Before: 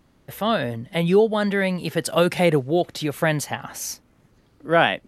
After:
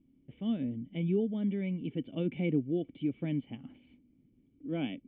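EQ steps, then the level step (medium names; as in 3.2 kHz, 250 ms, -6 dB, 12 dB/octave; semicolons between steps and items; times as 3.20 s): cascade formant filter i; treble shelf 2.8 kHz -11 dB; 0.0 dB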